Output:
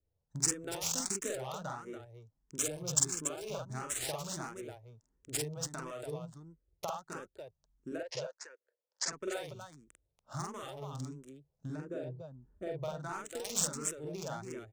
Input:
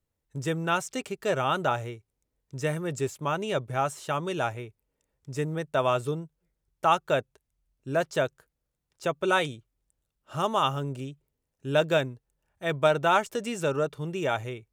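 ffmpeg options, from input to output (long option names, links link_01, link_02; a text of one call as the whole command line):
ffmpeg -i in.wav -filter_complex "[0:a]asplit=3[link_01][link_02][link_03];[link_01]afade=type=out:start_time=11.74:duration=0.02[link_04];[link_02]tiltshelf=frequency=970:gain=9,afade=type=in:start_time=11.74:duration=0.02,afade=type=out:start_time=12.82:duration=0.02[link_05];[link_03]afade=type=in:start_time=12.82:duration=0.02[link_06];[link_04][link_05][link_06]amix=inputs=3:normalize=0,acompressor=threshold=-36dB:ratio=10,aexciter=amount=15.9:drive=2.8:freq=4500,adynamicsmooth=sensitivity=6:basefreq=1100,asettb=1/sr,asplit=3[link_07][link_08][link_09];[link_07]atrim=end=2.584[link_10];[link_08]atrim=start=2.58:end=3.7,asetpts=PTS-STARTPTS,afade=type=in:duration=0.004:curve=qsin,afade=type=out:start_time=1.116:duration=0.004:curve=qsin,asuperstop=centerf=1900:order=8:qfactor=7.3[link_11];[link_09]atrim=start=3.696[link_12];[link_10][link_11]acrossfade=duration=0.004:curve1=hsin:curve2=qsin[link_13];[link_13][link_12]acrossfade=duration=0.004:curve1=qsin:curve2=hsin,asettb=1/sr,asplit=3[link_14][link_15][link_16];[link_14]atrim=end=7.984[link_17];[link_15]atrim=start=7.98:end=9.08,asetpts=PTS-STARTPTS,afade=type=in:duration=0.004:curve=qsin,afade=type=out:start_time=1.096:duration=0.004:curve=qsin,highpass=frequency=480:width=0.5412,highpass=frequency=480:width=1.3066,equalizer=frequency=510:width_type=q:width=4:gain=6,equalizer=frequency=740:width_type=q:width=4:gain=-9,equalizer=frequency=1200:width_type=q:width=4:gain=-6,equalizer=frequency=1800:width_type=q:width=4:gain=5,equalizer=frequency=3700:width_type=q:width=4:gain=-8,equalizer=frequency=5500:width_type=q:width=4:gain=-3,lowpass=frequency=6100:width=0.5412,lowpass=frequency=6100:width=1.3066[link_18];[link_16]atrim=start=9.076[link_19];[link_17][link_18]acrossfade=duration=0.004:curve1=hsin:curve2=qsin[link_20];[link_20][link_19]acrossfade=duration=0.004:curve1=qsin:curve2=hsin,aecho=1:1:46.65|285.7:0.794|0.447,asplit=2[link_21][link_22];[link_22]afreqshift=1.5[link_23];[link_21][link_23]amix=inputs=2:normalize=1" out.wav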